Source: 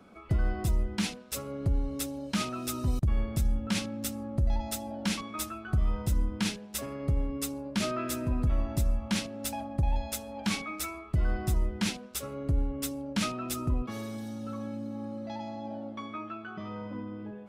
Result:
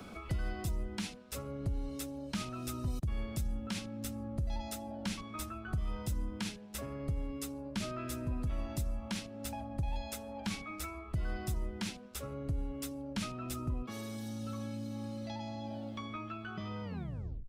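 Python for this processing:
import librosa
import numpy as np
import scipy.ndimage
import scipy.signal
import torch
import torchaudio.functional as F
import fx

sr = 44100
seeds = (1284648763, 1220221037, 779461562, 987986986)

y = fx.tape_stop_end(x, sr, length_s=0.65)
y = fx.band_squash(y, sr, depth_pct=70)
y = F.gain(torch.from_numpy(y), -7.5).numpy()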